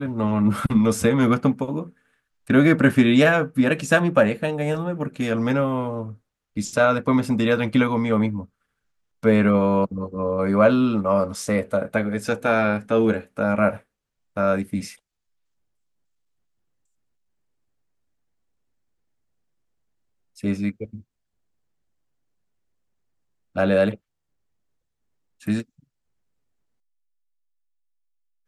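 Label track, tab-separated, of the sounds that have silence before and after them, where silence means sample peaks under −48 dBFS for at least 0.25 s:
2.470000	6.170000	sound
6.560000	8.460000	sound
9.230000	13.810000	sound
14.360000	14.960000	sound
20.360000	21.020000	sound
23.550000	23.960000	sound
25.400000	25.800000	sound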